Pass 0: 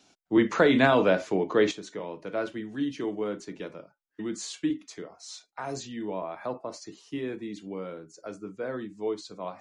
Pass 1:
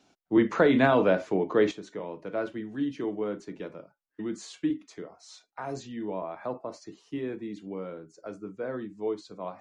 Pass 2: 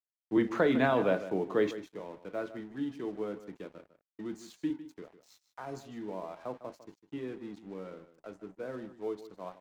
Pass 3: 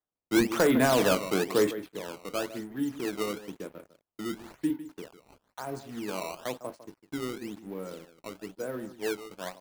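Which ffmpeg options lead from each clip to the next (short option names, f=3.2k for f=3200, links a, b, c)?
-af "highshelf=f=2.7k:g=-9"
-af "aeval=exprs='sgn(val(0))*max(abs(val(0))-0.00299,0)':c=same,aecho=1:1:153:0.2,volume=-5dB"
-af "aresample=16000,volume=21.5dB,asoftclip=hard,volume=-21.5dB,aresample=44100,acrusher=samples=15:mix=1:aa=0.000001:lfo=1:lforange=24:lforate=1,volume=4.5dB"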